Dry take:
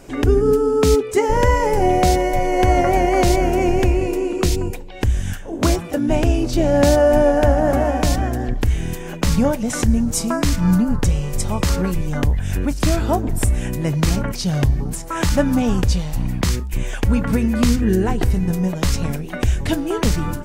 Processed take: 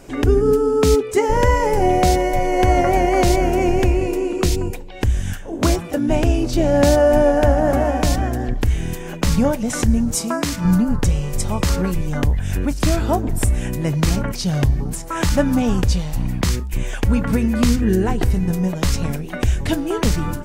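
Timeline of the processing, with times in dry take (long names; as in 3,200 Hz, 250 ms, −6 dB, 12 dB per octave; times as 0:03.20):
0:10.15–0:10.65: high-pass filter 210 Hz 6 dB per octave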